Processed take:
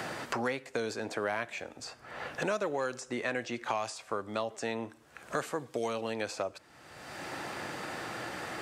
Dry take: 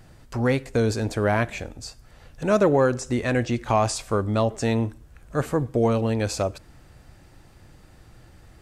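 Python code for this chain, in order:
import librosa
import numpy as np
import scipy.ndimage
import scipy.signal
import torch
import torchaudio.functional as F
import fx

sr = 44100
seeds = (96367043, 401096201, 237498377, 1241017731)

y = fx.weighting(x, sr, curve='A')
y = fx.band_squash(y, sr, depth_pct=100)
y = y * librosa.db_to_amplitude(-7.5)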